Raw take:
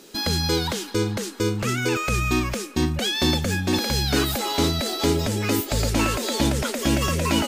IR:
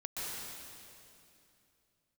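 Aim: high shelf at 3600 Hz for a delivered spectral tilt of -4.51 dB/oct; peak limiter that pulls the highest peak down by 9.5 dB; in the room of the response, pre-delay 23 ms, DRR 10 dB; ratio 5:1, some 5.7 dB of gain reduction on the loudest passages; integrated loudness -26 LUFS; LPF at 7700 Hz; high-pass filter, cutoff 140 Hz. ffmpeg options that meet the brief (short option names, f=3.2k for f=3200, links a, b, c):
-filter_complex "[0:a]highpass=140,lowpass=7.7k,highshelf=f=3.6k:g=-6.5,acompressor=threshold=-24dB:ratio=5,alimiter=limit=-22.5dB:level=0:latency=1,asplit=2[a][b];[1:a]atrim=start_sample=2205,adelay=23[c];[b][c]afir=irnorm=-1:irlink=0,volume=-12.5dB[d];[a][d]amix=inputs=2:normalize=0,volume=5dB"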